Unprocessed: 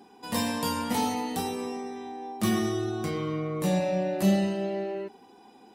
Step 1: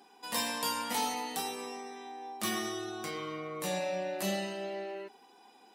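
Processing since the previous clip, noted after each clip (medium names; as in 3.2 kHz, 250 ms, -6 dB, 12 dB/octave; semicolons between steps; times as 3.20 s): high-pass 1 kHz 6 dB/octave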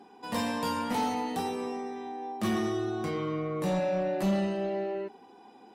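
tilt EQ -3.5 dB/octave; saturation -25.5 dBFS, distortion -17 dB; trim +4 dB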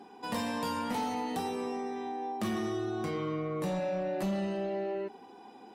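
compression 3:1, threshold -34 dBFS, peak gain reduction 7.5 dB; trim +2 dB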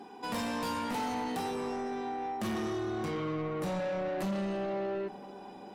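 saturation -33 dBFS, distortion -14 dB; filtered feedback delay 443 ms, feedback 71%, level -20 dB; trim +3 dB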